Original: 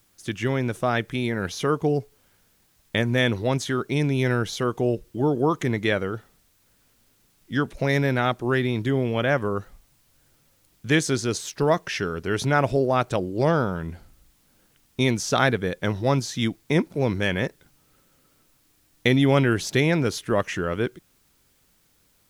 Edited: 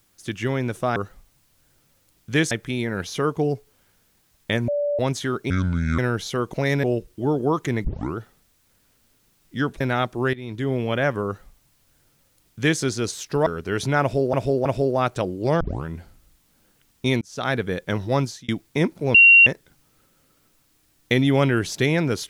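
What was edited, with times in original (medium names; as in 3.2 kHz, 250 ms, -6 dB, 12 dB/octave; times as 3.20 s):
3.13–3.44 s: bleep 581 Hz -20 dBFS
3.95–4.25 s: speed 62%
5.81 s: tape start 0.32 s
7.77–8.07 s: move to 4.80 s
8.60–9.02 s: fade in linear, from -18.5 dB
9.52–11.07 s: copy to 0.96 s
11.73–12.05 s: delete
12.60–12.92 s: loop, 3 plays
13.55 s: tape start 0.25 s
15.16–15.60 s: fade in
16.16–16.43 s: fade out
17.09–17.41 s: bleep 2.75 kHz -7.5 dBFS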